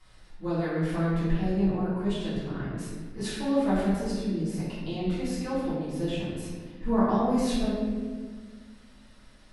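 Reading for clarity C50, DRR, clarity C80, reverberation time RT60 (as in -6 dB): -1.5 dB, -12.0 dB, 1.0 dB, 1.6 s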